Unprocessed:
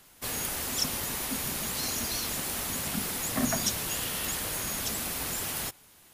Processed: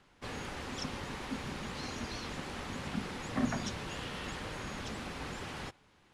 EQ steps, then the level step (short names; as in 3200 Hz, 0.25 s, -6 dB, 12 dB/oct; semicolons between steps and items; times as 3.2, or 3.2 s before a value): LPF 2500 Hz 6 dB/oct; air absorption 82 m; notch 660 Hz, Q 12; -2.0 dB